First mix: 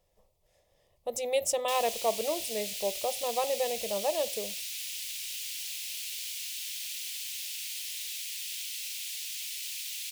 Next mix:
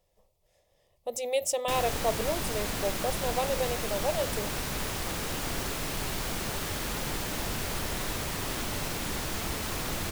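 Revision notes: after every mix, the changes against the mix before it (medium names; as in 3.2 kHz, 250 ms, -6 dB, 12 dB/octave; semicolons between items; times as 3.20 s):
background: remove steep high-pass 2.5 kHz 36 dB/octave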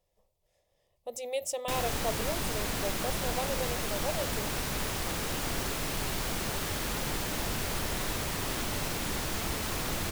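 speech -5.0 dB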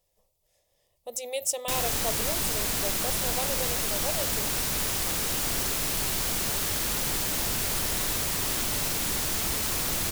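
master: add treble shelf 4 kHz +10.5 dB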